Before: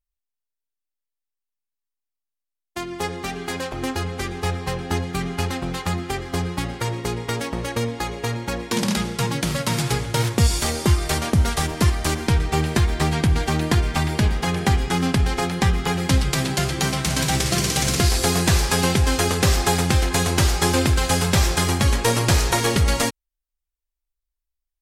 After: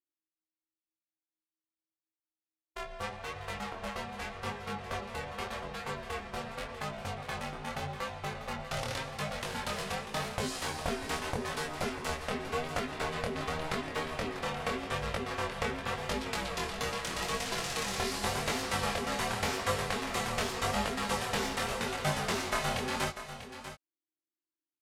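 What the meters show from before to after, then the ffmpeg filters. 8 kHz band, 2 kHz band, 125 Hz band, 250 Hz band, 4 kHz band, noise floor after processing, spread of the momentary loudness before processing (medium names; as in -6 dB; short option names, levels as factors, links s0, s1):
-15.5 dB, -9.0 dB, -20.5 dB, -16.0 dB, -12.0 dB, under -85 dBFS, 8 LU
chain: -filter_complex "[0:a]bass=f=250:g=-13,treble=f=4000:g=-7,aeval=exprs='val(0)*sin(2*PI*320*n/s)':c=same,flanger=delay=19.5:depth=6.4:speed=0.86,asplit=2[s0][s1];[s1]aecho=0:1:643:0.266[s2];[s0][s2]amix=inputs=2:normalize=0,volume=0.708"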